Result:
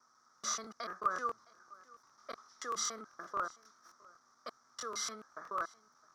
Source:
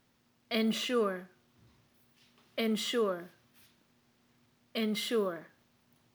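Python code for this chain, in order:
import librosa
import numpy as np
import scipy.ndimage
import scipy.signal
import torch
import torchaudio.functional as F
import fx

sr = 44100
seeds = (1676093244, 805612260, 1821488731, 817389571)

p1 = fx.block_reorder(x, sr, ms=145.0, group=3)
p2 = fx.high_shelf(p1, sr, hz=4400.0, db=-8.0)
p3 = fx.over_compress(p2, sr, threshold_db=-39.0, ratio=-1.0)
p4 = p2 + (p3 * 10.0 ** (3.0 / 20.0))
p5 = fx.double_bandpass(p4, sr, hz=2700.0, octaves=2.2)
p6 = p5 + 10.0 ** (-23.0 / 20.0) * np.pad(p5, (int(664 * sr / 1000.0), 0))[:len(p5)]
p7 = fx.buffer_crackle(p6, sr, first_s=0.36, period_s=0.13, block=1024, kind='repeat')
y = p7 * 10.0 ** (6.5 / 20.0)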